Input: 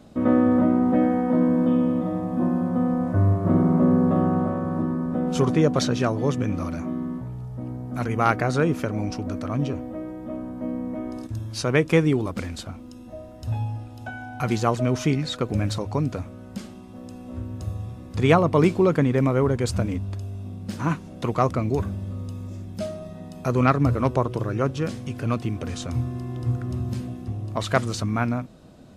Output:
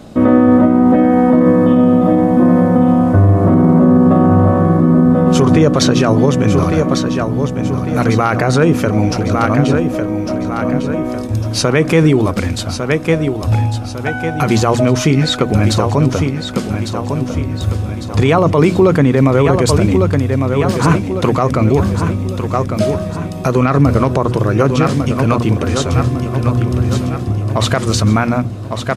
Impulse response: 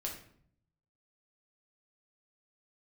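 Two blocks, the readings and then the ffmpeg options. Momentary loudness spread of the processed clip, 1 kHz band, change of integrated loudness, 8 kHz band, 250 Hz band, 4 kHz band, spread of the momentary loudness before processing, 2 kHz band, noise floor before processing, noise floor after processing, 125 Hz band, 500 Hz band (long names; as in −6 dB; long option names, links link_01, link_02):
9 LU, +10.5 dB, +10.5 dB, +13.5 dB, +11.0 dB, +13.0 dB, 15 LU, +10.0 dB, −41 dBFS, −22 dBFS, +11.5 dB, +11.0 dB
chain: -af "bandreject=frequency=60:width_type=h:width=6,bandreject=frequency=120:width_type=h:width=6,bandreject=frequency=180:width_type=h:width=6,bandreject=frequency=240:width_type=h:width=6,bandreject=frequency=300:width_type=h:width=6,aecho=1:1:1152|2304|3456|4608|5760:0.355|0.16|0.0718|0.0323|0.0145,alimiter=level_in=14.5dB:limit=-1dB:release=50:level=0:latency=1,volume=-1dB"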